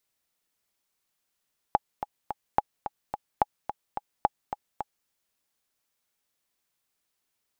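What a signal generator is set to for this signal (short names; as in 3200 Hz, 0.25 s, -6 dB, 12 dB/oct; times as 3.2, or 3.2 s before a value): metronome 216 bpm, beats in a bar 3, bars 4, 833 Hz, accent 10.5 dB -7 dBFS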